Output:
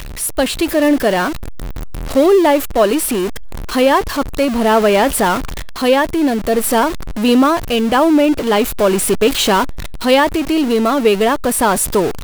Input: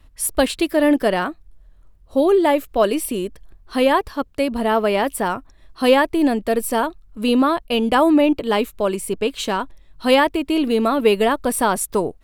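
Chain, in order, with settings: jump at every zero crossing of -21 dBFS; level rider; trim -1 dB

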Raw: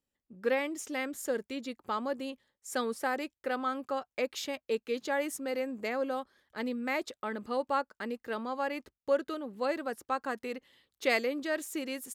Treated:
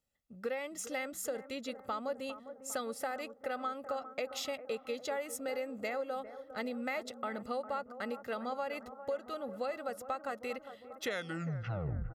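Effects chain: tape stop on the ending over 1.21 s; comb 1.5 ms, depth 58%; compression, threshold -34 dBFS, peak gain reduction 13.5 dB; on a send: bucket-brigade echo 403 ms, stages 4096, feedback 64%, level -12.5 dB

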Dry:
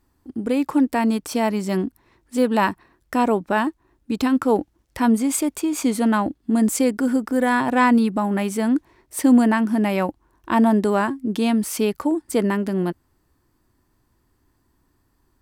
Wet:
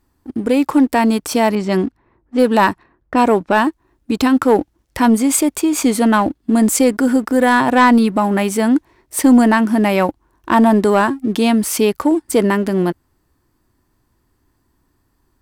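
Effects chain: 1.55–3.56 s: level-controlled noise filter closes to 870 Hz, open at -16.5 dBFS; dynamic bell 200 Hz, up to -3 dB, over -29 dBFS, Q 1.4; waveshaping leveller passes 1; trim +4 dB

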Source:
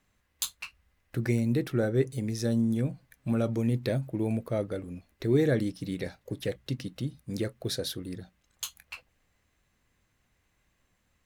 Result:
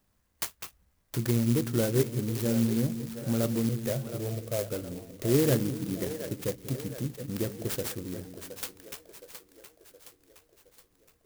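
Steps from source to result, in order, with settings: 3.69–4.72 s: static phaser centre 990 Hz, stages 6; on a send: two-band feedback delay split 390 Hz, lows 189 ms, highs 718 ms, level -9.5 dB; on the sum: sampling jitter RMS 0.11 ms

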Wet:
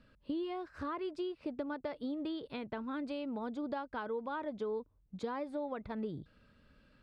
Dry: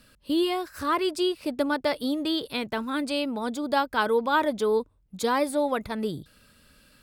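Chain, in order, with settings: compression 5:1, threshold -30 dBFS, peak gain reduction 11 dB; tape spacing loss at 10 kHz 29 dB; trim -4 dB

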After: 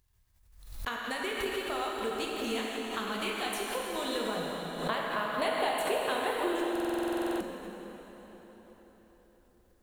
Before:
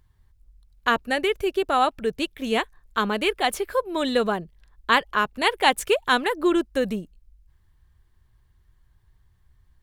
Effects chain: companding laws mixed up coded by A; treble shelf 3.2 kHz +9.5 dB; compression 6:1, threshold -28 dBFS, peak gain reduction 16.5 dB; 4.36–6.51 s: fifteen-band graphic EQ 160 Hz +8 dB, 630 Hz +12 dB, 6.3 kHz -10 dB; plate-style reverb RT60 4.8 s, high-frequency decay 0.8×, DRR -3.5 dB; buffer glitch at 6.71 s, samples 2048, times 14; swell ahead of each attack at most 70 dB/s; trim -6.5 dB

